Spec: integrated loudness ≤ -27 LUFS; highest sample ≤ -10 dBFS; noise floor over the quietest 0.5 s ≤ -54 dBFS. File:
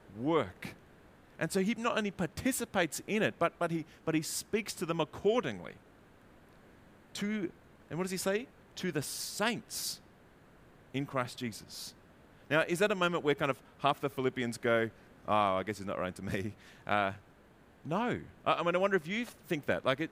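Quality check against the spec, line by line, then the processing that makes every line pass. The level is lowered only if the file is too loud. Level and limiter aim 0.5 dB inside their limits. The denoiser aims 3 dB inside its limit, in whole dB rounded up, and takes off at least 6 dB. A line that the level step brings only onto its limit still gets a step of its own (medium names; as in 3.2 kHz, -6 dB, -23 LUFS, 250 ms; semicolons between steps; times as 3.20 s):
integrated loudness -33.5 LUFS: pass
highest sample -13.0 dBFS: pass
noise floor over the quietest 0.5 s -60 dBFS: pass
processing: none needed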